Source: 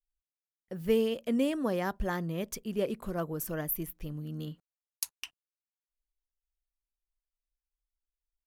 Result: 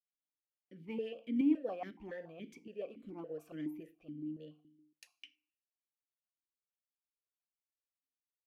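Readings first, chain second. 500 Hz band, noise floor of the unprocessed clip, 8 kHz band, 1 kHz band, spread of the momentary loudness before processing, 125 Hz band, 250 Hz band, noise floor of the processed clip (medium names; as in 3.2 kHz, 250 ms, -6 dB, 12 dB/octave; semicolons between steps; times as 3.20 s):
-11.5 dB, under -85 dBFS, under -25 dB, -11.5 dB, 13 LU, -17.0 dB, -4.0 dB, under -85 dBFS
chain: FDN reverb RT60 0.5 s, low-frequency decay 1.45×, high-frequency decay 0.95×, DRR 11 dB; rotary cabinet horn 6.3 Hz, later 0.75 Hz, at 1.87 s; stepped vowel filter 7.1 Hz; trim +3.5 dB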